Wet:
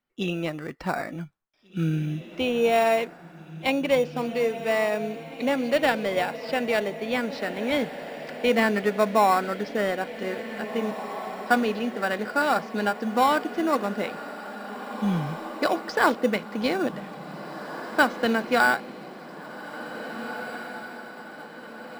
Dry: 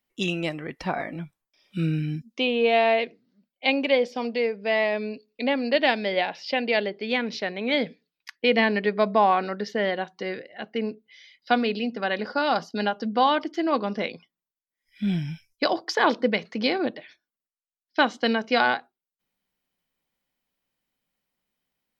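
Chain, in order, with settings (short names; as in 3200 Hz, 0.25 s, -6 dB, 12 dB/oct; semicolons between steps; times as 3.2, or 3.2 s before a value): LPF 3100 Hz 6 dB/oct; bell 1400 Hz +7 dB 0.43 oct; in parallel at -10 dB: sample-and-hold 14×; on the sum: diffused feedback echo 1.954 s, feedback 55%, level -12 dB; gain -2.5 dB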